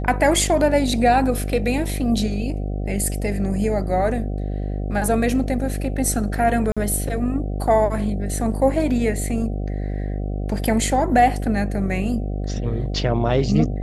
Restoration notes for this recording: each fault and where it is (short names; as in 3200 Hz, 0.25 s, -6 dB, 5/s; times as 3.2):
buzz 50 Hz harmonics 15 -25 dBFS
6.72–6.77 gap 46 ms